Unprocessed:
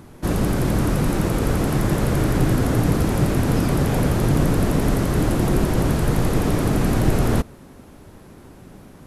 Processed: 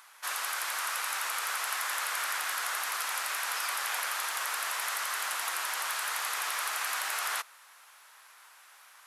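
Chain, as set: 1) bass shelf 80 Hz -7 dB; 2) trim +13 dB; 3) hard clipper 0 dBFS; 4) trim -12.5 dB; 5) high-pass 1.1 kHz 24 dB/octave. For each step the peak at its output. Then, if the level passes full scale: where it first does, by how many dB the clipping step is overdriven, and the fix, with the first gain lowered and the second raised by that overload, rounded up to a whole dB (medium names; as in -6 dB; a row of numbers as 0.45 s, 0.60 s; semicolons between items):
-7.0 dBFS, +6.0 dBFS, 0.0 dBFS, -12.5 dBFS, -16.0 dBFS; step 2, 6.0 dB; step 2 +7 dB, step 4 -6.5 dB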